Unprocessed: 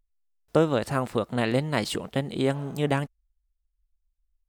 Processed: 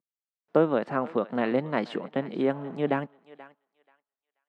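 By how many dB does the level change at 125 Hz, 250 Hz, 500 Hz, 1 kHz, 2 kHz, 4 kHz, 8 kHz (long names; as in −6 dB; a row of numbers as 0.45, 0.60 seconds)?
−8.5 dB, −0.5 dB, 0.0 dB, 0.0 dB, −2.5 dB, −10.0 dB, below −25 dB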